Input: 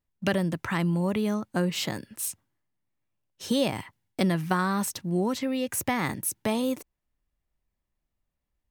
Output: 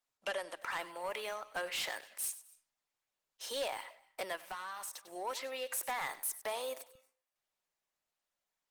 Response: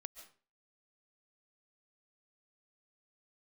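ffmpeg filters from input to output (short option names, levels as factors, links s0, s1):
-filter_complex "[0:a]asplit=3[s0][s1][s2];[s0]afade=t=out:st=0.82:d=0.02[s3];[s1]adynamicequalizer=threshold=0.00708:dfrequency=2200:dqfactor=0.86:tfrequency=2200:tqfactor=0.86:attack=5:release=100:ratio=0.375:range=2.5:mode=boostabove:tftype=bell,afade=t=in:st=0.82:d=0.02,afade=t=out:st=2.29:d=0.02[s4];[s2]afade=t=in:st=2.29:d=0.02[s5];[s3][s4][s5]amix=inputs=3:normalize=0,highpass=f=570:w=0.5412,highpass=f=570:w=1.3066,asoftclip=type=tanh:threshold=0.0376,asplit=2[s6][s7];[1:a]atrim=start_sample=2205,lowshelf=f=400:g=-5,adelay=97[s8];[s7][s8]afir=irnorm=-1:irlink=0,volume=0.355[s9];[s6][s9]amix=inputs=2:normalize=0,asplit=3[s10][s11][s12];[s10]afade=t=out:st=4.36:d=0.02[s13];[s11]acompressor=threshold=0.00891:ratio=2.5,afade=t=in:st=4.36:d=0.02,afade=t=out:st=5.1:d=0.02[s14];[s12]afade=t=in:st=5.1:d=0.02[s15];[s13][s14][s15]amix=inputs=3:normalize=0,volume=0.794" -ar 48000 -c:a libopus -b:a 20k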